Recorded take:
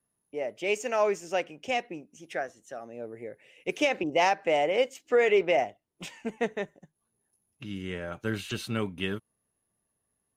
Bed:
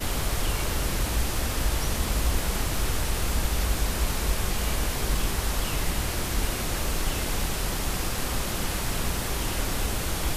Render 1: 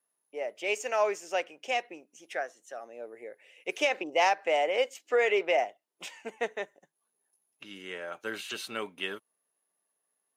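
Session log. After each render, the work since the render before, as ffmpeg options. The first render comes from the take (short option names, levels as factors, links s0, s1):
-af "highpass=480"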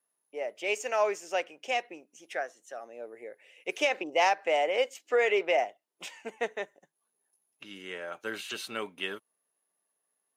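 -af anull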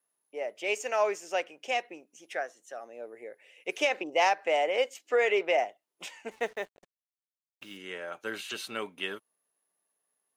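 -filter_complex "[0:a]asettb=1/sr,asplit=3[s0][s1][s2];[s0]atrim=end=6.314[s3];[s1]atrim=start=6.31:end=7.77,asetpts=PTS-STARTPTS,afade=t=in:d=0.004:c=qsin,afade=t=out:st=1.456:d=0.004:c=qsin,acrusher=bits=8:mix=0:aa=0.5[s4];[s2]atrim=start=7.766[s5];[s3][s4]acrossfade=d=0.004:c1=hsin:c2=qsin[s6];[s6][s5]acrossfade=d=0.004:c1=qsin:c2=hsin"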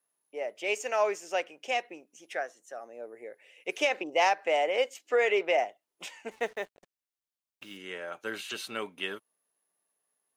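-filter_complex "[0:a]asettb=1/sr,asplit=3[s0][s1][s2];[s0]atrim=end=2.594[s3];[s1]atrim=start=2.59:end=3.24,asetpts=PTS-STARTPTS,afade=t=in:d=0.004:c=qsin,afade=t=out:st=0.646:d=0.004:c=qsin,equalizer=f=3200:w=1.5:g=-6.5[s4];[s2]atrim=start=3.236[s5];[s3][s4]acrossfade=d=0.004:c1=hsin:c2=qsin[s6];[s6][s5]acrossfade=d=0.004:c1=qsin:c2=hsin"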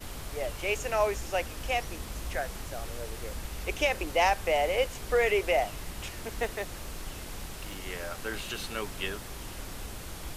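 -filter_complex "[1:a]volume=0.237[s0];[0:a][s0]amix=inputs=2:normalize=0"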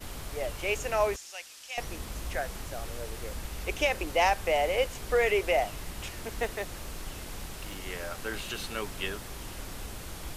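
-filter_complex "[0:a]asettb=1/sr,asplit=3[s0][s1][s2];[s0]atrim=end=1.164[s3];[s1]atrim=start=1.16:end=1.78,asetpts=PTS-STARTPTS,afade=t=in:d=0.004:c=qsin,afade=t=out:st=0.616:d=0.004:c=qsin,bandpass=f=5900:t=q:w=0.89[s4];[s2]atrim=start=1.776[s5];[s3][s4]acrossfade=d=0.004:c1=hsin:c2=qsin[s6];[s6][s5]acrossfade=d=0.004:c1=qsin:c2=hsin"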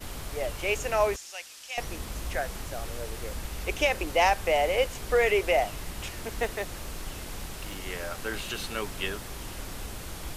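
-af "volume=1.26"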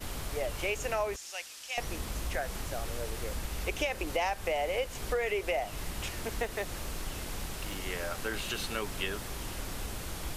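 -af "acompressor=threshold=0.0355:ratio=4"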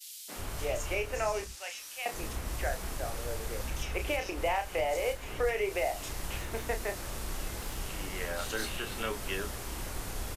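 -filter_complex "[0:a]asplit=2[s0][s1];[s1]adelay=31,volume=0.447[s2];[s0][s2]amix=inputs=2:normalize=0,acrossover=split=190|3300[s3][s4][s5];[s4]adelay=280[s6];[s3]adelay=360[s7];[s7][s6][s5]amix=inputs=3:normalize=0"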